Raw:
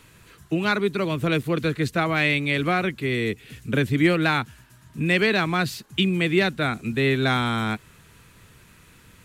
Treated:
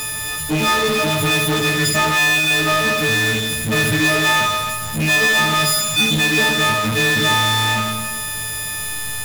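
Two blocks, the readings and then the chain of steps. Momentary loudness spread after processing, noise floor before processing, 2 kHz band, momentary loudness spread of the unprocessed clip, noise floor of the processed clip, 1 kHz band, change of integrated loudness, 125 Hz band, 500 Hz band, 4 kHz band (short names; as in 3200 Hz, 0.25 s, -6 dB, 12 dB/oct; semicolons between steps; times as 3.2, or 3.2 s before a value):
9 LU, -53 dBFS, +9.5 dB, 8 LU, -25 dBFS, +8.5 dB, +7.0 dB, +3.0 dB, +2.5 dB, +12.5 dB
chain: frequency quantiser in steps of 6 st; in parallel at -10.5 dB: backlash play -27 dBFS; on the sum: Schroeder reverb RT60 0.8 s, combs from 27 ms, DRR 3.5 dB; power-law curve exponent 0.35; gain -7.5 dB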